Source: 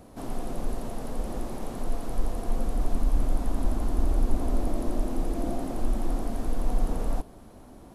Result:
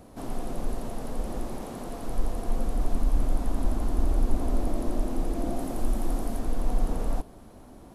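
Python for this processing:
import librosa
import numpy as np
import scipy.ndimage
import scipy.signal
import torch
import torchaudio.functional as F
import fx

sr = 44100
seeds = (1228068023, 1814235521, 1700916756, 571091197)

y = fx.highpass(x, sr, hz=88.0, slope=6, at=(1.61, 2.02))
y = fx.high_shelf(y, sr, hz=8300.0, db=7.5, at=(5.56, 6.39))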